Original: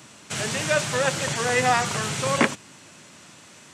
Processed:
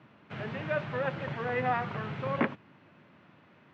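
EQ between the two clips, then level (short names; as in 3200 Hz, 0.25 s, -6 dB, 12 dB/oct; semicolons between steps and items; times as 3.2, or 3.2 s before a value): HPF 79 Hz; air absorption 320 m; tone controls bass +2 dB, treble -15 dB; -7.0 dB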